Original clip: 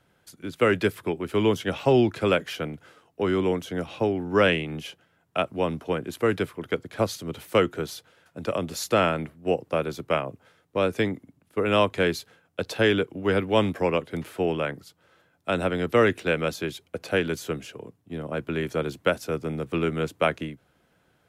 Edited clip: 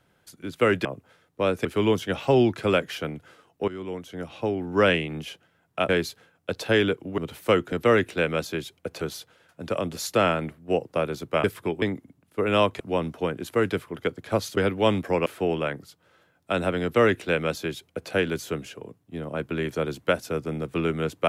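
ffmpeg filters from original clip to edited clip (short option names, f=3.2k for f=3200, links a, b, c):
-filter_complex "[0:a]asplit=13[a][b][c][d][e][f][g][h][i][j][k][l][m];[a]atrim=end=0.852[n];[b]atrim=start=10.208:end=11.012[o];[c]atrim=start=1.228:end=3.26,asetpts=PTS-STARTPTS,afade=t=out:st=2.028:d=0.004:c=hsin:silence=0.177828[p];[d]atrim=start=3.26:end=5.472,asetpts=PTS-STARTPTS,afade=t=in:d=1.11:silence=0.177828[q];[e]atrim=start=11.988:end=13.282[r];[f]atrim=start=7.238:end=7.782[s];[g]atrim=start=15.808:end=17.102[t];[h]atrim=start=7.778:end=10.212[u];[i]atrim=start=0.848:end=1.232[v];[j]atrim=start=11.008:end=11.992[w];[k]atrim=start=5.468:end=7.242[x];[l]atrim=start=13.278:end=13.972[y];[m]atrim=start=14.238[z];[n][o]acrossfade=d=0.004:c1=hsin:c2=hsin[aa];[p][q]concat=n=2:v=0:a=1[ab];[aa][ab]acrossfade=d=0.004:c1=hsin:c2=hsin[ac];[ac][r]acrossfade=d=0.004:c1=hsin:c2=hsin[ad];[ad][s]acrossfade=d=0.004:c1=hsin:c2=hsin[ae];[ae][t]acrossfade=d=0.004:c1=hsin:c2=hsin[af];[af][u]acrossfade=d=0.004:c1=hsin:c2=hsin[ag];[ag][v]acrossfade=d=0.004:c1=hsin:c2=hsin[ah];[ah][w]acrossfade=d=0.004:c1=hsin:c2=hsin[ai];[ai][x]acrossfade=d=0.004:c1=hsin:c2=hsin[aj];[aj][y]acrossfade=d=0.004:c1=hsin:c2=hsin[ak];[ak][z]acrossfade=d=0.004:c1=hsin:c2=hsin"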